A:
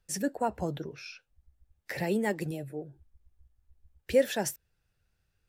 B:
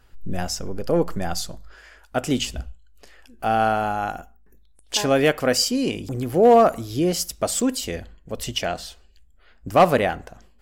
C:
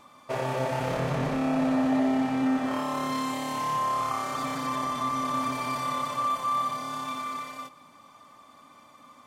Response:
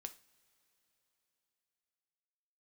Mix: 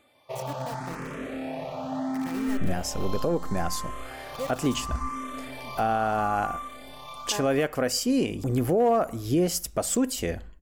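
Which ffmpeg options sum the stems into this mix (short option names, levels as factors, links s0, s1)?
-filter_complex "[0:a]acrusher=bits=4:mix=0:aa=0.000001,adelay=250,volume=0.299[s0];[1:a]equalizer=f=4000:w=1.1:g=-6,adelay=2350,volume=1.33[s1];[2:a]asplit=2[s2][s3];[s3]afreqshift=0.74[s4];[s2][s4]amix=inputs=2:normalize=1,volume=0.708[s5];[s0][s1][s5]amix=inputs=3:normalize=0,alimiter=limit=0.168:level=0:latency=1:release=380"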